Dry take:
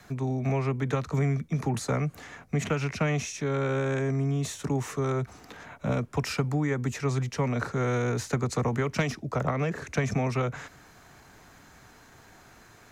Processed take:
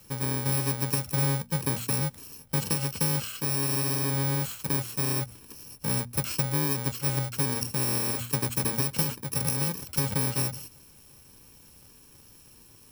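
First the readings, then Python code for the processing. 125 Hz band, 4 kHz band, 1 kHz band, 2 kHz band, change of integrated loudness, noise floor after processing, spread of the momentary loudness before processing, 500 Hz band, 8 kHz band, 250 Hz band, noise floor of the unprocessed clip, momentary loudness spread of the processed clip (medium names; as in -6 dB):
-1.5 dB, +7.0 dB, -2.5 dB, -2.5 dB, +2.0 dB, -54 dBFS, 5 LU, -6.5 dB, +10.5 dB, -3.0 dB, -54 dBFS, 5 LU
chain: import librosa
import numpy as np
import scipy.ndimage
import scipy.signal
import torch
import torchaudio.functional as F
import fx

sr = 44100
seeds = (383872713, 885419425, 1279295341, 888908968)

y = fx.bit_reversed(x, sr, seeds[0], block=64)
y = fx.hum_notches(y, sr, base_hz=60, count=4)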